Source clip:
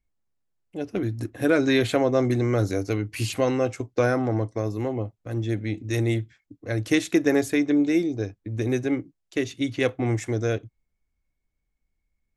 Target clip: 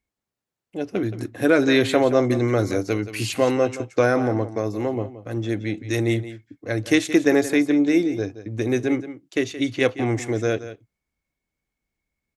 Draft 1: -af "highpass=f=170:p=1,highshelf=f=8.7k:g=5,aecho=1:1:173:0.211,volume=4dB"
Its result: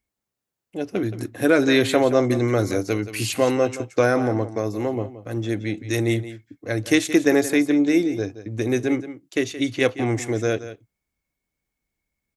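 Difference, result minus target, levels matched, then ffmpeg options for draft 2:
8000 Hz band +3.0 dB
-af "highpass=f=170:p=1,highshelf=f=8.7k:g=-3,aecho=1:1:173:0.211,volume=4dB"

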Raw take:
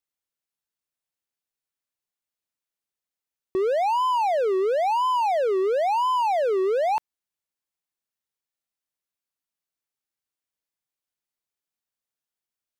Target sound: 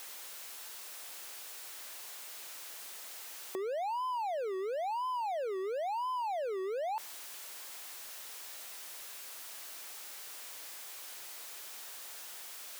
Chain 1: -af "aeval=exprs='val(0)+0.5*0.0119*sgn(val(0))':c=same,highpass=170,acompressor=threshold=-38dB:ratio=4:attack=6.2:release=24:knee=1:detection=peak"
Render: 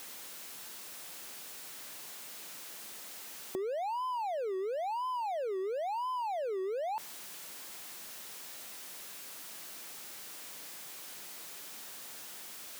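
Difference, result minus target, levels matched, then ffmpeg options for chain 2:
125 Hz band +14.0 dB
-af "aeval=exprs='val(0)+0.5*0.0119*sgn(val(0))':c=same,highpass=470,acompressor=threshold=-38dB:ratio=4:attack=6.2:release=24:knee=1:detection=peak"

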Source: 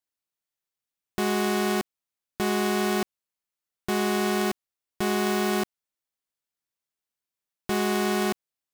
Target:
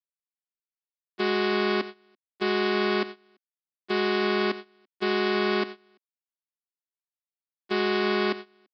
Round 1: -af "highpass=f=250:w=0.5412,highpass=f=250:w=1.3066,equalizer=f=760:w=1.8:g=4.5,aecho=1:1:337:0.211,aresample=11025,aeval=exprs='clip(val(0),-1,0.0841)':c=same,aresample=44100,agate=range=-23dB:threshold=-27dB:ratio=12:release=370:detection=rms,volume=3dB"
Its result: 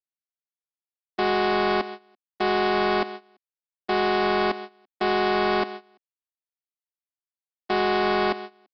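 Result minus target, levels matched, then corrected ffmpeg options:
1000 Hz band +5.0 dB
-af "highpass=f=250:w=0.5412,highpass=f=250:w=1.3066,equalizer=f=760:w=1.8:g=-7,aecho=1:1:337:0.211,aresample=11025,aeval=exprs='clip(val(0),-1,0.0841)':c=same,aresample=44100,agate=range=-23dB:threshold=-27dB:ratio=12:release=370:detection=rms,volume=3dB"

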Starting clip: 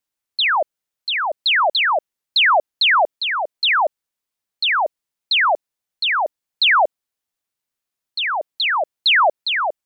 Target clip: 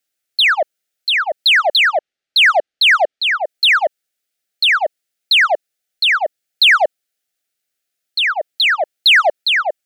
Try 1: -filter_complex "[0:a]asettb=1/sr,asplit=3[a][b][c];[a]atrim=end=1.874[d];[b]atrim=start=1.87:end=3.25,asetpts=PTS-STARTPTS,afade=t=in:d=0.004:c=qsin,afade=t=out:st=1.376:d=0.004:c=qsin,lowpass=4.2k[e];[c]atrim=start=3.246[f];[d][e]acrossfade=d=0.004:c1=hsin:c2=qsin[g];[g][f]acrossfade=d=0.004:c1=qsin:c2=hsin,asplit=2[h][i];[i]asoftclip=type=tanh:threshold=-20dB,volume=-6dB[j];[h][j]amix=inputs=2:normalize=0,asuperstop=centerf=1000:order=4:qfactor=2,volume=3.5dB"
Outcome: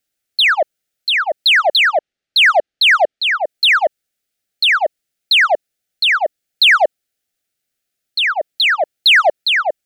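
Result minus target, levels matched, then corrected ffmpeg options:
250 Hz band +4.0 dB
-filter_complex "[0:a]asettb=1/sr,asplit=3[a][b][c];[a]atrim=end=1.874[d];[b]atrim=start=1.87:end=3.25,asetpts=PTS-STARTPTS,afade=t=in:d=0.004:c=qsin,afade=t=out:st=1.376:d=0.004:c=qsin,lowpass=4.2k[e];[c]atrim=start=3.246[f];[d][e]acrossfade=d=0.004:c1=hsin:c2=qsin[g];[g][f]acrossfade=d=0.004:c1=qsin:c2=hsin,asplit=2[h][i];[i]asoftclip=type=tanh:threshold=-20dB,volume=-6dB[j];[h][j]amix=inputs=2:normalize=0,asuperstop=centerf=1000:order=4:qfactor=2,lowshelf=f=260:g=-10.5,volume=3.5dB"

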